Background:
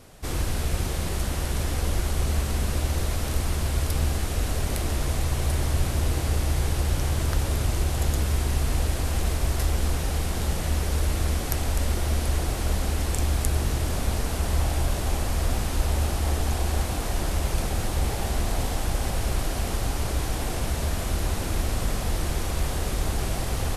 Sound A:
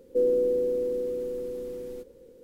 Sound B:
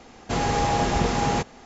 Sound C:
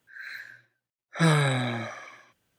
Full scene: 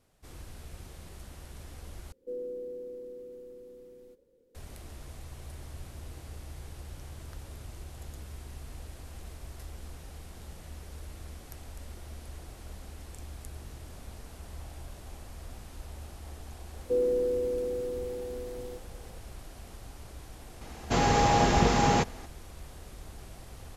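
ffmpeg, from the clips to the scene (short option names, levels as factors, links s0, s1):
-filter_complex "[1:a]asplit=2[s0][s1];[0:a]volume=0.106,asplit=2[s2][s3];[s2]atrim=end=2.124[s4];[s0]atrim=end=2.43,asetpts=PTS-STARTPTS,volume=0.188[s5];[s3]atrim=start=4.546[s6];[s1]atrim=end=2.43,asetpts=PTS-STARTPTS,volume=0.668,afade=t=in:d=0.004:c=hsin,afade=t=out:st=2.426:d=0.004:c=hsin,adelay=16750[s7];[2:a]atrim=end=1.65,asetpts=PTS-STARTPTS,volume=0.944,afade=t=in:d=0.004:c=hsin,afade=t=out:st=1.646:d=0.004:c=hsin,adelay=20610[s8];[s4][s5]acrossfade=d=0.004:c1=hsin:c2=hsin[s9];[s9][s6]acrossfade=d=0.004:c1=hsin:c2=hsin[s10];[s10][s7][s8]amix=inputs=3:normalize=0"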